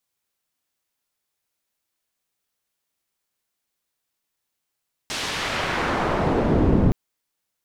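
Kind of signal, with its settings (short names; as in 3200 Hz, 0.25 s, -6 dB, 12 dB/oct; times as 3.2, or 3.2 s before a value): swept filtered noise white, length 1.82 s lowpass, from 5600 Hz, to 200 Hz, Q 0.77, exponential, gain ramp +27 dB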